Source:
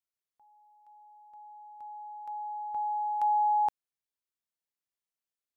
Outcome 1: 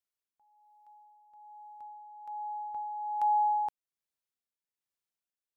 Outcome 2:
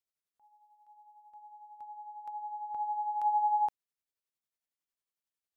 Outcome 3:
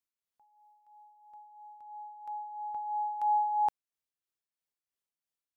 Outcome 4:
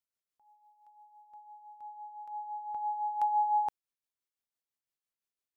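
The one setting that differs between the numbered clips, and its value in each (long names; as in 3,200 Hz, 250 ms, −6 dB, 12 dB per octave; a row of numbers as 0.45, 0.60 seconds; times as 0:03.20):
amplitude tremolo, speed: 1.2, 11, 3, 5.9 Hertz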